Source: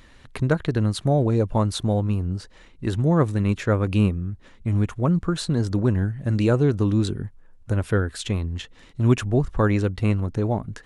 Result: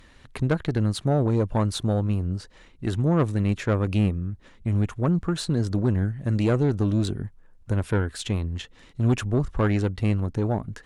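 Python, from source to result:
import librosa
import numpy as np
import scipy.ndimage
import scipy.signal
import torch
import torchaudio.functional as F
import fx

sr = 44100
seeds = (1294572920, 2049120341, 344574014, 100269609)

y = fx.tube_stage(x, sr, drive_db=14.0, bias=0.4)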